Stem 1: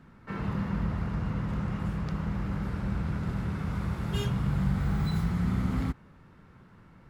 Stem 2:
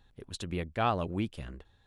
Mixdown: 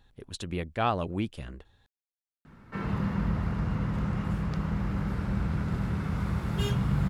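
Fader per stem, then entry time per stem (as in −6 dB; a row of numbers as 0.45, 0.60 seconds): +1.5, +1.5 decibels; 2.45, 0.00 seconds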